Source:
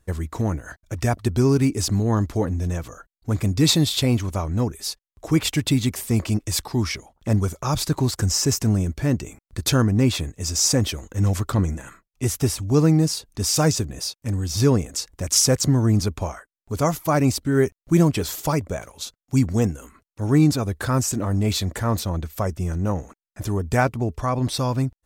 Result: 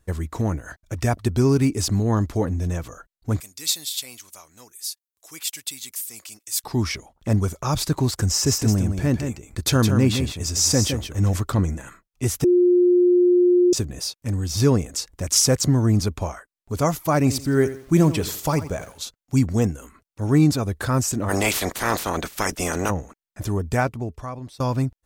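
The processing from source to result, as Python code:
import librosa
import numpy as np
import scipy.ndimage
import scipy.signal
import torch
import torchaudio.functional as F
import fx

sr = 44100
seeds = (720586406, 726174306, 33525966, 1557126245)

y = fx.differentiator(x, sr, at=(3.4, 6.64))
y = fx.echo_single(y, sr, ms=164, db=-7.0, at=(8.44, 11.35), fade=0.02)
y = fx.echo_crushed(y, sr, ms=85, feedback_pct=35, bits=7, wet_db=-13, at=(17.18, 19.04))
y = fx.spec_clip(y, sr, under_db=29, at=(21.28, 22.89), fade=0.02)
y = fx.edit(y, sr, fx.bleep(start_s=12.44, length_s=1.29, hz=356.0, db=-12.5),
    fx.fade_out_to(start_s=23.57, length_s=1.03, floor_db=-23.5), tone=tone)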